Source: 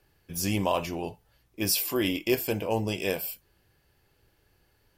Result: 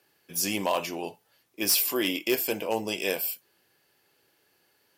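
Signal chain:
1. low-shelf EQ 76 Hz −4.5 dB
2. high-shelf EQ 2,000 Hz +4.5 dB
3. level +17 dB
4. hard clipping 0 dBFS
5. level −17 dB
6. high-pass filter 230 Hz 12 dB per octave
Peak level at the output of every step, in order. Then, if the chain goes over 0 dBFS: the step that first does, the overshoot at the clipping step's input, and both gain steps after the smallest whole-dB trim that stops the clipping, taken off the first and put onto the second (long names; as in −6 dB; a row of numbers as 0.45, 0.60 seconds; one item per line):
−12.0, −8.0, +9.0, 0.0, −17.0, −12.0 dBFS
step 3, 9.0 dB
step 3 +8 dB, step 5 −8 dB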